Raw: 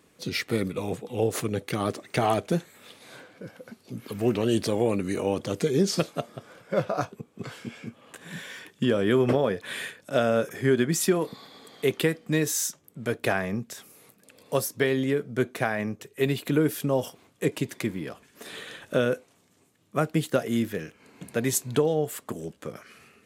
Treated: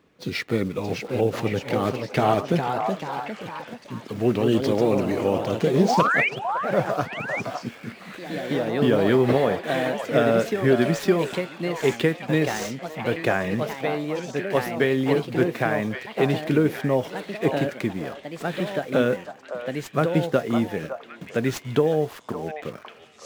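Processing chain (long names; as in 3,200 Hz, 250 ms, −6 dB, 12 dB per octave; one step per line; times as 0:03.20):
running median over 5 samples
high-shelf EQ 5,200 Hz −7 dB
in parallel at −8 dB: bit reduction 7 bits
on the sum: sound drawn into the spectrogram rise, 0:05.88–0:06.29, 650–2,500 Hz −22 dBFS
on a send: echo through a band-pass that steps 560 ms, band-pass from 870 Hz, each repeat 1.4 octaves, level −4 dB
on the sum: delay with pitch and tempo change per echo 648 ms, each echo +2 semitones, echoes 3, each echo −6 dB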